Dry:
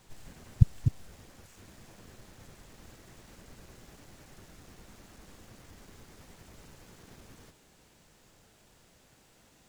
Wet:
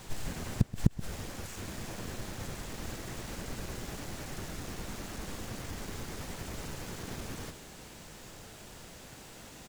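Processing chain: flipped gate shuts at -21 dBFS, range -33 dB; outdoor echo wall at 22 m, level -15 dB; gain +12.5 dB

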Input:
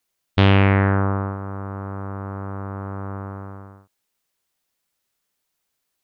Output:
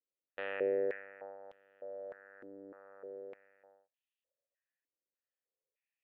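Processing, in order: vowel filter e; stepped band-pass 3.3 Hz 300–3200 Hz; gain +6 dB

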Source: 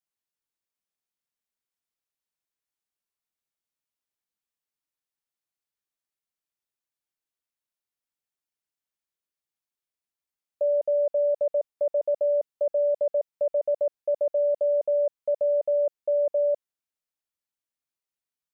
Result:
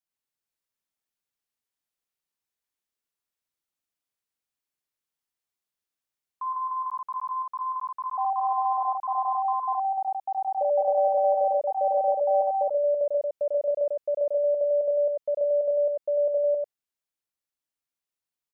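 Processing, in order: echo 96 ms -3 dB; echoes that change speed 0.229 s, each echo +5 st, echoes 2; gain -2 dB

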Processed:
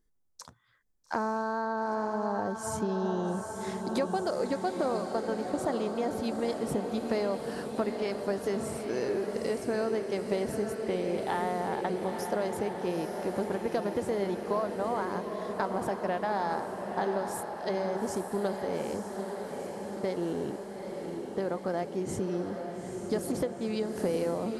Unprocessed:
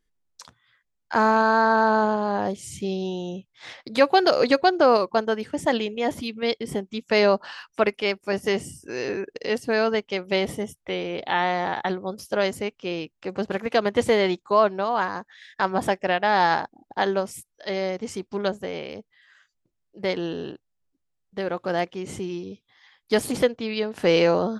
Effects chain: bell 2800 Hz -12.5 dB 1.5 oct; compressor, threshold -30 dBFS, peak gain reduction 15.5 dB; diffused feedback echo 0.875 s, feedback 69%, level -6 dB; gain +1.5 dB

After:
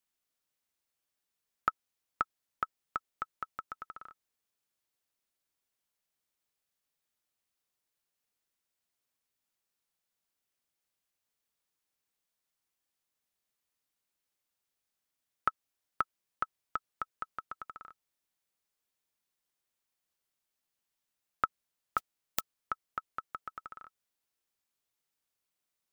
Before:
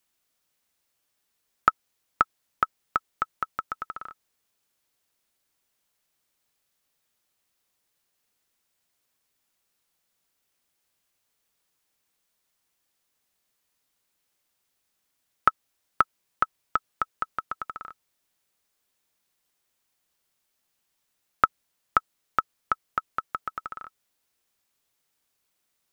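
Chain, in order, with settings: 21.97–22.39 spectral whitening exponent 0.1; gain -10 dB

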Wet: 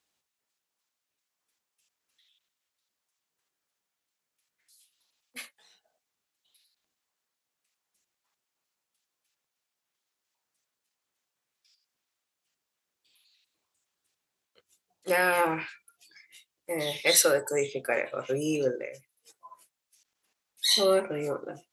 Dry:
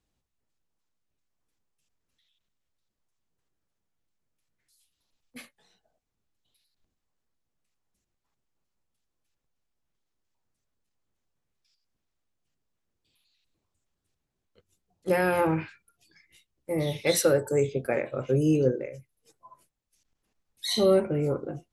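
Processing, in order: HPF 1300 Hz 6 dB/oct; gain +6.5 dB

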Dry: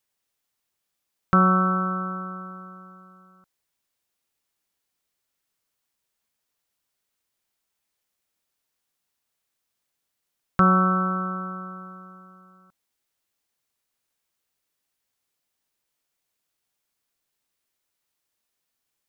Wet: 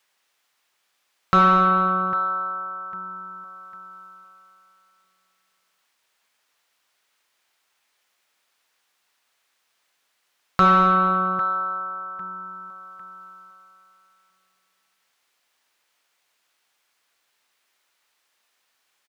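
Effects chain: feedback echo 0.801 s, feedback 26%, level -15.5 dB; overdrive pedal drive 16 dB, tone 1600 Hz, clips at -6 dBFS; mismatched tape noise reduction encoder only

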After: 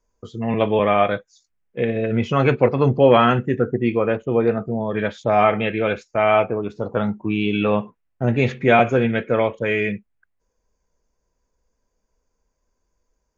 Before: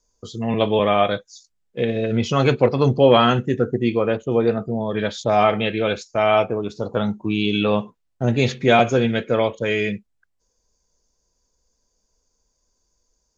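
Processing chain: resonant high shelf 3100 Hz -10 dB, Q 1.5

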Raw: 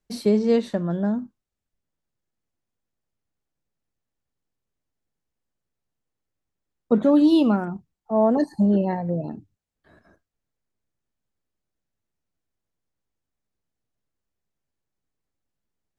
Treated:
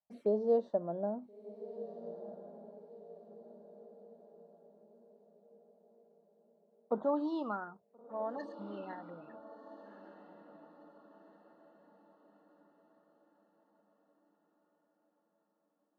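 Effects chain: band-pass sweep 650 Hz -> 1900 Hz, 6.54–8.08; envelope phaser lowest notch 390 Hz, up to 2300 Hz, full sweep at -38 dBFS; diffused feedback echo 1.391 s, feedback 44%, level -13 dB; gain -1.5 dB

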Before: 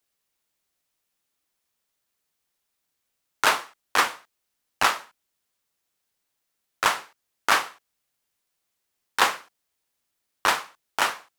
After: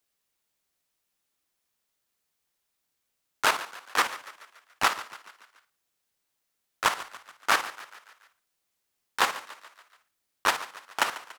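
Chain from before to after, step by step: level quantiser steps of 10 dB; frequency-shifting echo 0.143 s, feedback 54%, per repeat +44 Hz, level -16.5 dB

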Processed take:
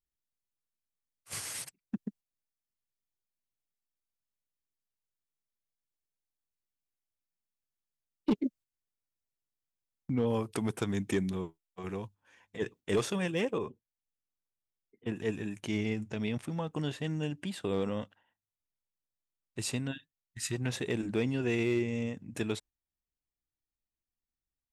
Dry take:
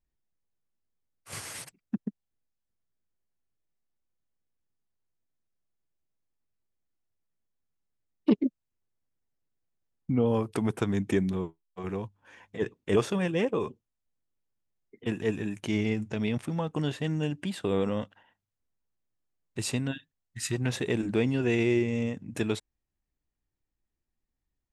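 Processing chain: gate -46 dBFS, range -7 dB; high shelf 2600 Hz +7.5 dB, from 13.58 s -5.5 dB, from 15.16 s +2.5 dB; hard clip -16 dBFS, distortion -24 dB; gain -4.5 dB

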